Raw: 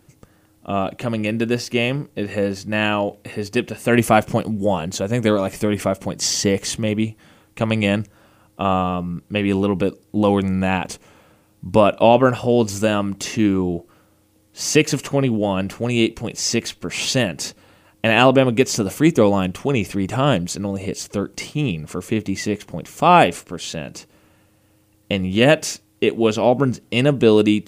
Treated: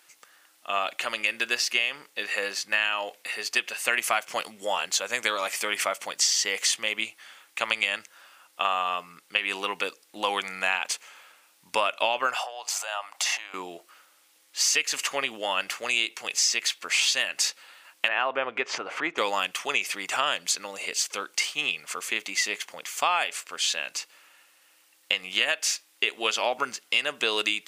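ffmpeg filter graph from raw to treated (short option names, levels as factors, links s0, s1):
-filter_complex "[0:a]asettb=1/sr,asplit=3[s0][s1][s2];[s0]atrim=end=12.364[s3];[s1]atrim=start=12.36:end=13.54,asetpts=PTS-STARTPTS,afade=t=in:d=0.004:c=qsin,afade=t=out:st=1.176:d=0.004:c=qsin,acompressor=threshold=0.0501:ratio=16:attack=3.2:release=140:knee=1:detection=peak,highpass=f=740:t=q:w=4[s4];[s2]atrim=start=13.536[s5];[s3][s4]acrossfade=d=0.004:c1=hsin:c2=qsin[s6];[s6][s5]acrossfade=d=0.004:c1=qsin:c2=hsin,asettb=1/sr,asplit=3[s7][s8][s9];[s7]atrim=end=18.084[s10];[s8]atrim=start=18.08:end=19.18,asetpts=PTS-STARTPTS,afade=t=in:d=0.004:c=qsin,afade=t=out:st=1.096:d=0.004:c=qsin,lowpass=1500,equalizer=f=200:w=1.9:g=-5,acompressor=mode=upward:threshold=0.141:ratio=2.5:attack=3.2:release=140:knee=2.83:detection=peak[s11];[s9]atrim=start=19.176[s12];[s10][s11]acrossfade=d=0.004:c1=hsin:c2=qsin[s13];[s13][s12]acrossfade=d=0.004:c1=qsin:c2=hsin,highpass=1500,highshelf=f=6900:g=-5,acompressor=threshold=0.0447:ratio=12,volume=2.24"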